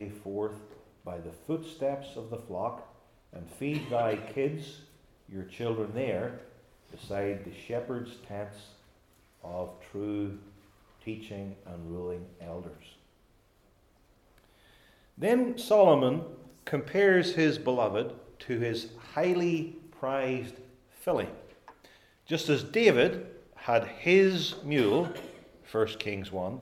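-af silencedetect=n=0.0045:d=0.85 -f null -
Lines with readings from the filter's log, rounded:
silence_start: 12.94
silence_end: 14.38 | silence_duration: 1.44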